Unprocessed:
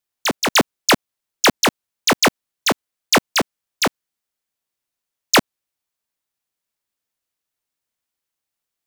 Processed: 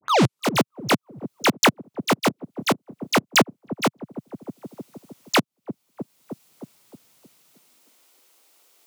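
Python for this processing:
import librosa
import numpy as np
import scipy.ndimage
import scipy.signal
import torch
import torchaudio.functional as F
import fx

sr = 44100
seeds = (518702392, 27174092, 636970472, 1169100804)

y = fx.tape_start_head(x, sr, length_s=0.49)
y = fx.peak_eq(y, sr, hz=1700.0, db=-6.5, octaves=0.26)
y = fx.auto_swell(y, sr, attack_ms=413.0)
y = fx.leveller(y, sr, passes=2)
y = fx.echo_wet_lowpass(y, sr, ms=311, feedback_pct=42, hz=440.0, wet_db=-16.0)
y = fx.filter_sweep_highpass(y, sr, from_hz=130.0, to_hz=380.0, start_s=7.41, end_s=8.09, q=1.4)
y = fx.band_squash(y, sr, depth_pct=70)
y = y * 10.0 ** (7.0 / 20.0)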